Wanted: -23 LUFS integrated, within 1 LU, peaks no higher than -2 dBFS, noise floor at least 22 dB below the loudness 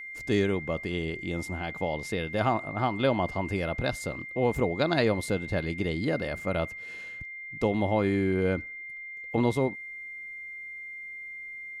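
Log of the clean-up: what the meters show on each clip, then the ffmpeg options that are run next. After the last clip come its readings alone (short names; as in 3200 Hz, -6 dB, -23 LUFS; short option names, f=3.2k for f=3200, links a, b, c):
steady tone 2100 Hz; tone level -38 dBFS; loudness -30.0 LUFS; peak -10.5 dBFS; loudness target -23.0 LUFS
-> -af "bandreject=f=2.1k:w=30"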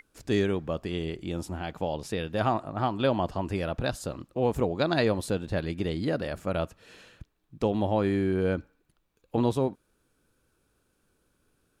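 steady tone none; loudness -29.5 LUFS; peak -10.5 dBFS; loudness target -23.0 LUFS
-> -af "volume=6.5dB"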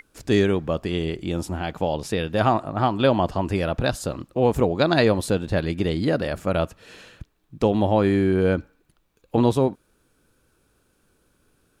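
loudness -23.0 LUFS; peak -4.0 dBFS; noise floor -66 dBFS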